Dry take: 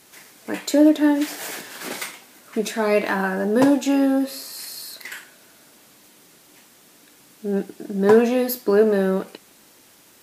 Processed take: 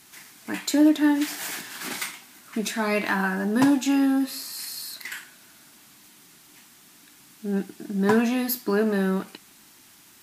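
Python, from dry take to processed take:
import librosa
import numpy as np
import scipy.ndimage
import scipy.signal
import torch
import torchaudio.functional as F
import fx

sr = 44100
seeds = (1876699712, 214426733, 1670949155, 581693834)

y = fx.peak_eq(x, sr, hz=510.0, db=-14.5, octaves=0.66)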